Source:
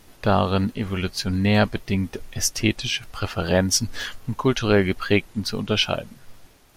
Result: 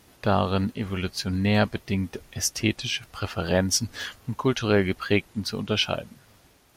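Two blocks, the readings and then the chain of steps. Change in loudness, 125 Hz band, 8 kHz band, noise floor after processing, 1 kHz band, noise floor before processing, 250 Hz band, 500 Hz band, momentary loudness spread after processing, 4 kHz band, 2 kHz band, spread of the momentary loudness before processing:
−3.0 dB, −3.0 dB, −3.0 dB, −58 dBFS, −3.0 dB, −52 dBFS, −3.0 dB, −3.0 dB, 9 LU, −3.0 dB, −3.0 dB, 9 LU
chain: high-pass filter 48 Hz
level −3 dB

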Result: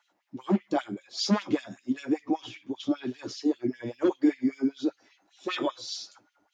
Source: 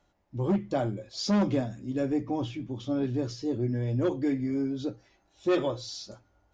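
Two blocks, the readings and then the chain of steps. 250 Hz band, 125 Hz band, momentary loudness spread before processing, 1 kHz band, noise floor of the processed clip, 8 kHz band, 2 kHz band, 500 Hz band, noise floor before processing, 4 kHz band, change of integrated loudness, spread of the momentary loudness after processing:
+1.0 dB, −9.0 dB, 10 LU, +1.5 dB, −74 dBFS, can't be measured, +3.0 dB, −2.0 dB, −70 dBFS, +3.5 dB, 0.0 dB, 12 LU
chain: parametric band 520 Hz −6.5 dB 0.82 octaves
auto-filter high-pass sine 5.1 Hz 240–3,200 Hz
level +1.5 dB

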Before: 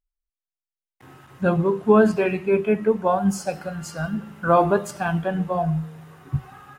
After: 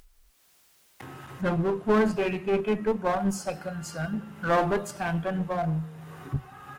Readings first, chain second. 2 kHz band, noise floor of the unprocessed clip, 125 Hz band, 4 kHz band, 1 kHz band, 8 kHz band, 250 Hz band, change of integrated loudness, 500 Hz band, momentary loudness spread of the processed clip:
−3.5 dB, below −85 dBFS, −5.0 dB, 0.0 dB, −6.0 dB, −3.0 dB, −5.5 dB, −6.0 dB, −6.5 dB, 13 LU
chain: asymmetric clip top −22.5 dBFS
upward compression, threshold −30 dBFS
level −3.5 dB

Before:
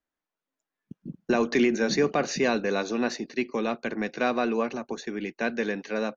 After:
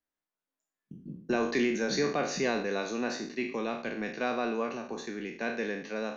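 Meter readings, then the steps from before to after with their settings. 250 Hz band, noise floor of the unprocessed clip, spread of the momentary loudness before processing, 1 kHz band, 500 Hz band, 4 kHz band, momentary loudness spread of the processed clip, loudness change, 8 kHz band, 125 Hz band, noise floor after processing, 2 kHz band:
−5.5 dB, below −85 dBFS, 11 LU, −4.5 dB, −5.0 dB, −3.5 dB, 10 LU, −4.5 dB, can't be measured, −4.5 dB, below −85 dBFS, −4.0 dB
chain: peak hold with a decay on every bin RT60 0.56 s
level −6.5 dB

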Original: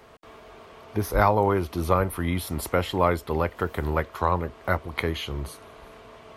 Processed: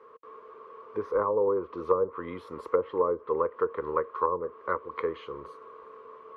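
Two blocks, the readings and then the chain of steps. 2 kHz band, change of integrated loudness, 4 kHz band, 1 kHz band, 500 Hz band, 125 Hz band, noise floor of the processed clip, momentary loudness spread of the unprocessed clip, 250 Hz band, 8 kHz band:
−11.5 dB, −4.0 dB, below −15 dB, −5.5 dB, −0.5 dB, −21.0 dB, −51 dBFS, 10 LU, −10.0 dB, below −30 dB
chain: pair of resonant band-passes 720 Hz, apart 1.2 octaves
treble cut that deepens with the level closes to 650 Hz, closed at −25.5 dBFS
level +6 dB

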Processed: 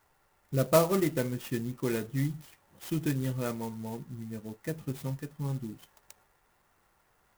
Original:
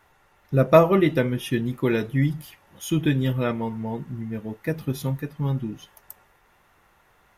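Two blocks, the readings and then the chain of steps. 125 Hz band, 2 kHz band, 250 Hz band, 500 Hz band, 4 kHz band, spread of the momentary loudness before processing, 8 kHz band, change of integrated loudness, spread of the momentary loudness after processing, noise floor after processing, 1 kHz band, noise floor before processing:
−8.5 dB, −10.0 dB, −8.5 dB, −8.5 dB, −7.0 dB, 15 LU, +0.5 dB, −8.5 dB, 16 LU, −70 dBFS, −9.0 dB, −61 dBFS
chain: converter with an unsteady clock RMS 0.059 ms
level −8.5 dB

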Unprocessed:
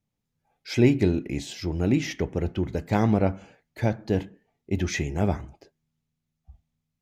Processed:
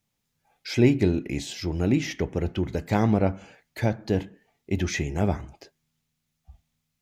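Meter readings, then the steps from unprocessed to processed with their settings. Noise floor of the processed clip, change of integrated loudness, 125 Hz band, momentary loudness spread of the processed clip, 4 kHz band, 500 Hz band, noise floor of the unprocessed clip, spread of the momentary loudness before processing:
−79 dBFS, 0.0 dB, 0.0 dB, 11 LU, +1.0 dB, 0.0 dB, −82 dBFS, 10 LU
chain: one half of a high-frequency compander encoder only

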